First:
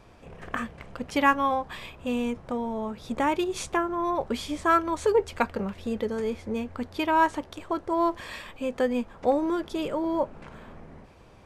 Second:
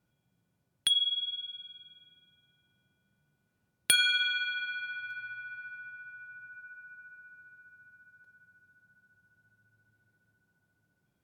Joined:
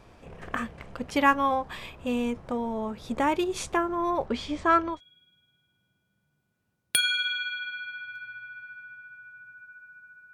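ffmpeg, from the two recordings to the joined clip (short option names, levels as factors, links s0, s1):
-filter_complex "[0:a]asettb=1/sr,asplit=3[s0][s1][s2];[s0]atrim=end=4.264[s3];[s1]atrim=start=4.26:end=5.01,asetpts=PTS-STARTPTS,afade=t=in:d=0.004:c=qsin,afade=t=out:st=0.746:d=0.004:c=qsin,lowpass=5100[s4];[s2]atrim=start=5.006[s5];[s3][s4]acrossfade=d=0.004:c1=hsin:c2=qsin[s6];[s6][s5]acrossfade=d=0.004:c1=qsin:c2=hsin,apad=whole_dur=10.33,atrim=end=10.33,atrim=end=5.01,asetpts=PTS-STARTPTS[s7];[1:a]atrim=start=1.8:end=7.28,asetpts=PTS-STARTPTS[s8];[s7][s8]acrossfade=d=0.16:c1=tri:c2=tri"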